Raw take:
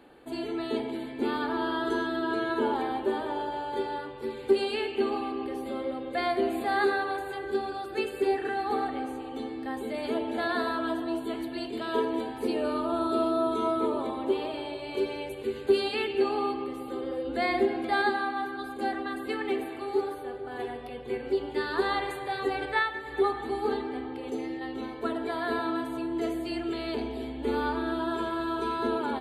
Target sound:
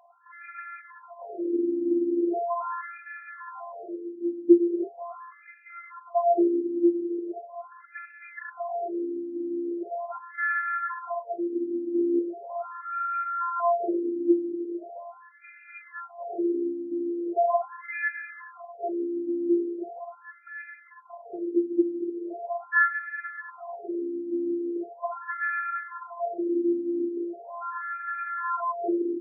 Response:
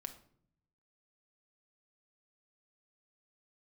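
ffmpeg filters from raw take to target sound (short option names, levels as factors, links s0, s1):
-af "afftfilt=real='hypot(re,im)*cos(PI*b)':imag='0':win_size=512:overlap=0.75,afftfilt=real='re*between(b*sr/1024,260*pow(1900/260,0.5+0.5*sin(2*PI*0.4*pts/sr))/1.41,260*pow(1900/260,0.5+0.5*sin(2*PI*0.4*pts/sr))*1.41)':imag='im*between(b*sr/1024,260*pow(1900/260,0.5+0.5*sin(2*PI*0.4*pts/sr))/1.41,260*pow(1900/260,0.5+0.5*sin(2*PI*0.4*pts/sr))*1.41)':win_size=1024:overlap=0.75,volume=2.66"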